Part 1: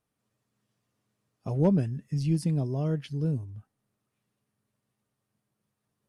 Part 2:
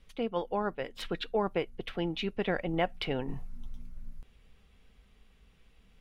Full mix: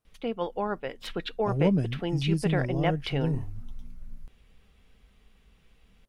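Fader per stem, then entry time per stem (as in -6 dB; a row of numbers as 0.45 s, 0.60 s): -0.5 dB, +1.5 dB; 0.00 s, 0.05 s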